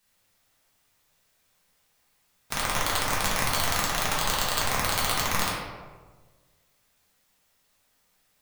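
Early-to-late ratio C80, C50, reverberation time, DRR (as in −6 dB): 3.0 dB, 0.5 dB, 1.4 s, −6.5 dB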